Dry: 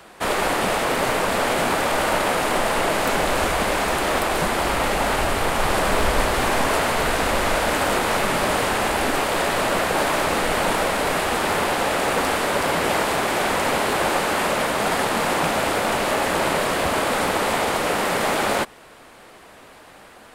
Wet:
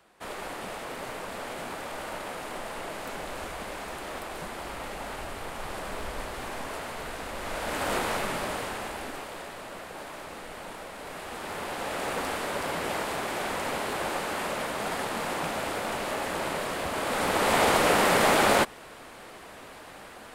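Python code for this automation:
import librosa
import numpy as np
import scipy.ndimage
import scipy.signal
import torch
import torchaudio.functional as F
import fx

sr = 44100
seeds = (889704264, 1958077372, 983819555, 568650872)

y = fx.gain(x, sr, db=fx.line((7.34, -16.0), (7.96, -7.0), (9.59, -20.0), (10.9, -20.0), (12.04, -10.0), (16.92, -10.0), (17.64, 0.0)))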